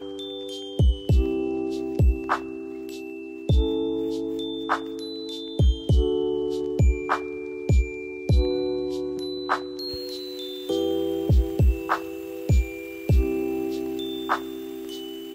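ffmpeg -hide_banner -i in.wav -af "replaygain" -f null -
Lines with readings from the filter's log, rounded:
track_gain = +8.0 dB
track_peak = 0.187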